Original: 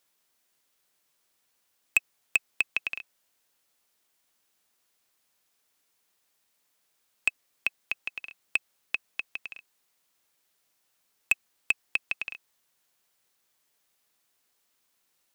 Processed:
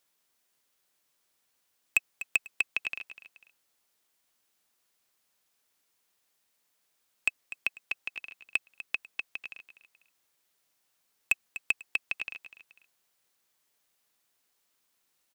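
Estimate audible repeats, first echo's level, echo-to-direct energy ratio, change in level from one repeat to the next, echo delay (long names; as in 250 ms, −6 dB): 2, −14.0 dB, −13.5 dB, −9.5 dB, 247 ms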